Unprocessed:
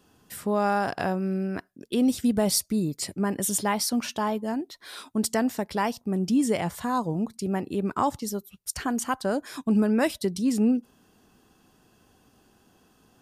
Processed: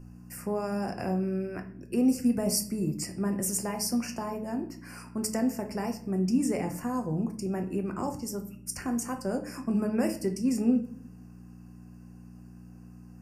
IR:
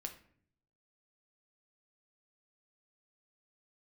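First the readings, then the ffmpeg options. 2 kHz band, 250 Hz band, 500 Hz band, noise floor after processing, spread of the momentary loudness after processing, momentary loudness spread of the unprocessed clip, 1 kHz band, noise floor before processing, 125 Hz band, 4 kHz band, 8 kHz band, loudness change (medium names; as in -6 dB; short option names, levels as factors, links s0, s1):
-8.5 dB, -2.5 dB, -4.5 dB, -49 dBFS, 23 LU, 9 LU, -9.0 dB, -63 dBFS, -1.5 dB, -6.5 dB, -3.5 dB, -3.5 dB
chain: -filter_complex "[0:a]bandreject=f=436.8:t=h:w=4,bandreject=f=873.6:t=h:w=4,bandreject=f=1310.4:t=h:w=4,bandreject=f=1747.2:t=h:w=4,bandreject=f=2184:t=h:w=4,bandreject=f=2620.8:t=h:w=4,bandreject=f=3057.6:t=h:w=4,bandreject=f=3494.4:t=h:w=4,bandreject=f=3931.2:t=h:w=4,bandreject=f=4368:t=h:w=4,bandreject=f=4804.8:t=h:w=4,bandreject=f=5241.6:t=h:w=4,bandreject=f=5678.4:t=h:w=4,bandreject=f=6115.2:t=h:w=4,bandreject=f=6552:t=h:w=4,bandreject=f=6988.8:t=h:w=4,bandreject=f=7425.6:t=h:w=4,bandreject=f=7862.4:t=h:w=4,bandreject=f=8299.2:t=h:w=4,bandreject=f=8736:t=h:w=4,bandreject=f=9172.8:t=h:w=4,bandreject=f=9609.6:t=h:w=4,bandreject=f=10046.4:t=h:w=4,bandreject=f=10483.2:t=h:w=4,bandreject=f=10920:t=h:w=4,bandreject=f=11356.8:t=h:w=4,bandreject=f=11793.6:t=h:w=4,acrossover=split=360|610|2900[s0][s1][s2][s3];[s2]acompressor=threshold=0.0126:ratio=6[s4];[s0][s1][s4][s3]amix=inputs=4:normalize=0,aeval=exprs='val(0)+0.01*(sin(2*PI*60*n/s)+sin(2*PI*2*60*n/s)/2+sin(2*PI*3*60*n/s)/3+sin(2*PI*4*60*n/s)/4+sin(2*PI*5*60*n/s)/5)':c=same,asuperstop=centerf=3600:order=8:qfactor=1.9[s5];[1:a]atrim=start_sample=2205[s6];[s5][s6]afir=irnorm=-1:irlink=0"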